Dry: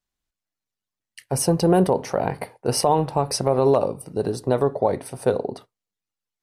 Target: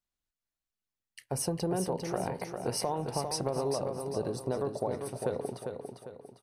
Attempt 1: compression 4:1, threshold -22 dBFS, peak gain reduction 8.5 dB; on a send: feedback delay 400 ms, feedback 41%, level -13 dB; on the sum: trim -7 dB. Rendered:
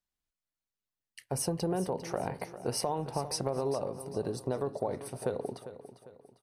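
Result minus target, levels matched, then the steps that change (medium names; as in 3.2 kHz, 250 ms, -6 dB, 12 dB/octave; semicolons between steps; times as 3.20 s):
echo-to-direct -7 dB
change: feedback delay 400 ms, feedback 41%, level -6 dB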